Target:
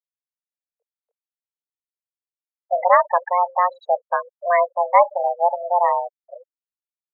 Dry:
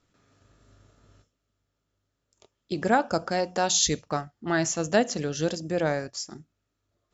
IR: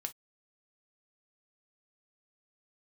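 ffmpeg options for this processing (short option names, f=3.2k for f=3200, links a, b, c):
-af "aemphasis=mode=reproduction:type=riaa,afftfilt=real='re*gte(hypot(re,im),0.112)':imag='im*gte(hypot(re,im),0.112)':win_size=1024:overlap=0.75,highpass=f=230:t=q:w=0.5412,highpass=f=230:t=q:w=1.307,lowpass=f=3k:t=q:w=0.5176,lowpass=f=3k:t=q:w=0.7071,lowpass=f=3k:t=q:w=1.932,afreqshift=350,volume=6dB"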